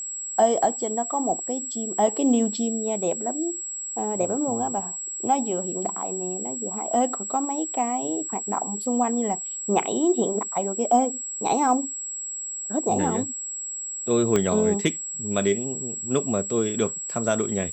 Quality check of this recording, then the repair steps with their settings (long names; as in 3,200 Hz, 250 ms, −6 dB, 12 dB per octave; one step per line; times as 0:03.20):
whistle 7,700 Hz −30 dBFS
0:14.36: click −9 dBFS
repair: click removal
notch filter 7,700 Hz, Q 30